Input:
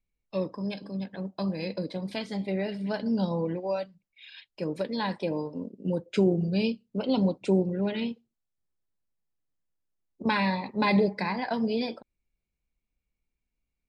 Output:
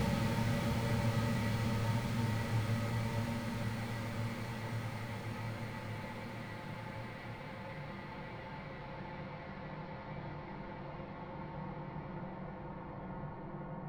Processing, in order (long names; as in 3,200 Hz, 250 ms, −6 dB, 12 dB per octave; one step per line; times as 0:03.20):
samples in bit-reversed order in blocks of 128 samples
treble cut that deepens with the level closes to 570 Hz, closed at −21 dBFS
high-shelf EQ 2,800 Hz −10 dB
in parallel at −2.5 dB: output level in coarse steps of 12 dB
on the sum: leveller curve on the samples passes 1
brickwall limiter −31 dBFS, peak gain reduction 12.5 dB
bit reduction 10 bits
on a send: echo through a band-pass that steps 376 ms, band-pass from 2,700 Hz, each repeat −1.4 octaves, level −5 dB
on the sum: formants moved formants −4 semitones
harmonic generator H 8 −13 dB, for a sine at −28 dBFS
extreme stretch with random phases 19×, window 1.00 s, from 0:08.08
level +5 dB